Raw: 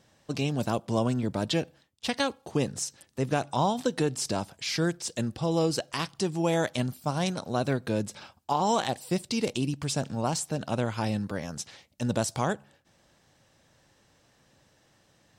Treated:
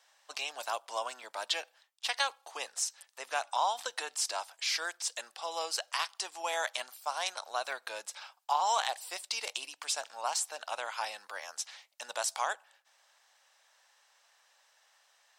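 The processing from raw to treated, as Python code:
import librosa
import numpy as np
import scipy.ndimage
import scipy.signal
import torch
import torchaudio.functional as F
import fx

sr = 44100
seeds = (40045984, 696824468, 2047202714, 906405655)

y = scipy.signal.sosfilt(scipy.signal.butter(4, 770.0, 'highpass', fs=sr, output='sos'), x)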